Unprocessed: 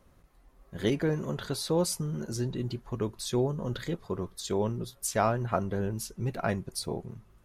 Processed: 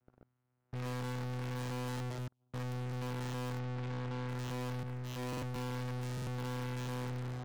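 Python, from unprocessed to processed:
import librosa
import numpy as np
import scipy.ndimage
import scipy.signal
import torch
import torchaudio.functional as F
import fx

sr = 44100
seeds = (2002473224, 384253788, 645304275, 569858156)

y = fx.spec_trails(x, sr, decay_s=1.06)
y = fx.gate_flip(y, sr, shuts_db=-25.0, range_db=-34, at=(2.08, 2.53), fade=0.02)
y = fx.vocoder(y, sr, bands=4, carrier='saw', carrier_hz=125.0)
y = y + 10.0 ** (-14.5 / 20.0) * np.pad(y, (int(177 * sr / 1000.0), 0))[:len(y)]
y = fx.leveller(y, sr, passes=5)
y = fx.peak_eq(y, sr, hz=1400.0, db=8.5, octaves=0.37)
y = np.clip(y, -10.0 ** (-31.5 / 20.0), 10.0 ** (-31.5 / 20.0))
y = fx.air_absorb(y, sr, metres=100.0, at=(3.59, 4.29))
y = fx.buffer_glitch(y, sr, at_s=(5.28, 6.13), block=2048, repeats=2)
y = fx.band_widen(y, sr, depth_pct=100, at=(4.83, 5.56))
y = y * librosa.db_to_amplitude(-6.5)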